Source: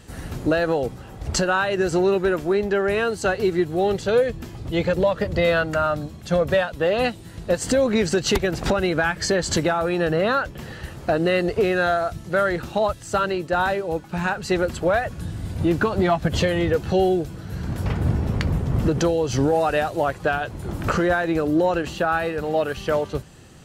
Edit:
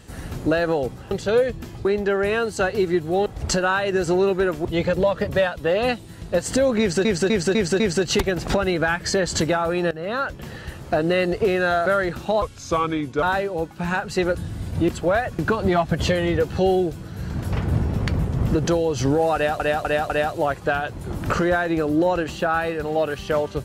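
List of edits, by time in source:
0:01.11–0:02.50: swap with 0:03.91–0:04.65
0:05.29–0:06.45: remove
0:07.96–0:08.21: repeat, 5 plays
0:10.07–0:10.51: fade in, from −18.5 dB
0:12.02–0:12.33: remove
0:12.89–0:13.56: play speed 83%
0:14.68–0:15.18: move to 0:15.72
0:19.68–0:19.93: repeat, 4 plays

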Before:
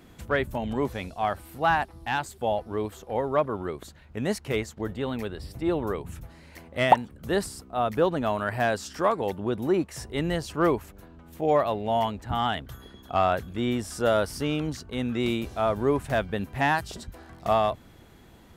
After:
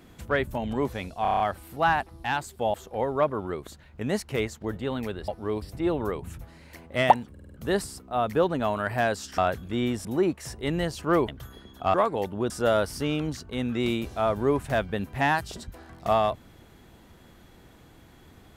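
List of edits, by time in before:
0:01.22: stutter 0.03 s, 7 plays
0:02.56–0:02.90: move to 0:05.44
0:07.13: stutter 0.05 s, 5 plays
0:09.00–0:09.56: swap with 0:13.23–0:13.90
0:10.79–0:12.57: remove

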